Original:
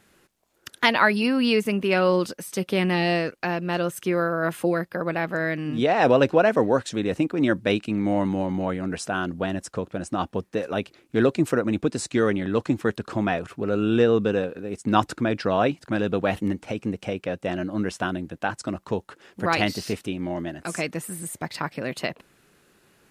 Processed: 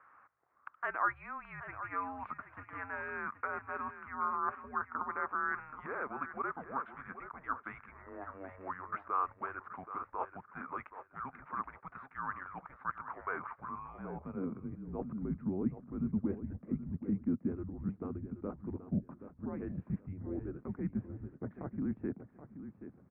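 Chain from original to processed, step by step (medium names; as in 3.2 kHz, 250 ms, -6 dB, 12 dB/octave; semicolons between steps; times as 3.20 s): reverse; compression 12:1, threshold -30 dBFS, peak gain reduction 18 dB; reverse; mains buzz 50 Hz, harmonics 8, -66 dBFS -5 dB/octave; mistuned SSB -280 Hz 170–2300 Hz; feedback delay 777 ms, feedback 23%, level -11.5 dB; band-pass sweep 1.2 kHz -> 220 Hz, 13.58–15.07 s; trim +7 dB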